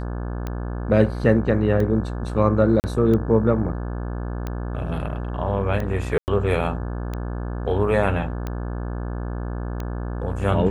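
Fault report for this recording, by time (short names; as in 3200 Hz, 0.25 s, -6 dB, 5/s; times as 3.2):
buzz 60 Hz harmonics 29 -28 dBFS
tick 45 rpm -16 dBFS
2.8–2.84 gap 39 ms
6.18–6.28 gap 99 ms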